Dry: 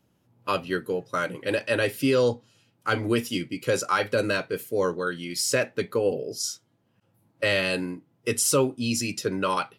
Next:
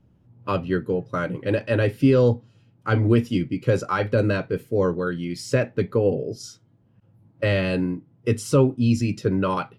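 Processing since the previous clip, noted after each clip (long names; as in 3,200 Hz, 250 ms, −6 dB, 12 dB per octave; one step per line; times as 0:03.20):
RIAA equalisation playback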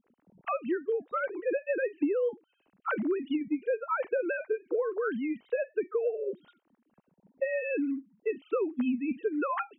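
three sine waves on the formant tracks
downward compressor 5 to 1, threshold −25 dBFS, peak gain reduction 14 dB
level −2 dB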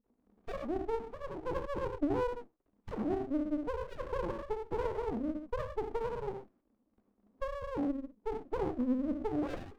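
reverb whose tail is shaped and stops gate 140 ms flat, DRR 2.5 dB
brick-wall band-pass 190–1,200 Hz
windowed peak hold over 33 samples
level −4 dB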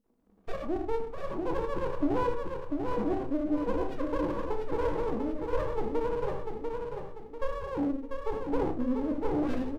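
on a send: repeating echo 693 ms, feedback 40%, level −4.5 dB
on the sum: rectangular room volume 140 cubic metres, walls furnished, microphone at 0.66 metres
level +2.5 dB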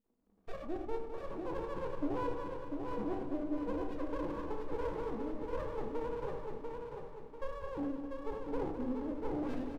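repeating echo 208 ms, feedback 55%, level −8.5 dB
level −8 dB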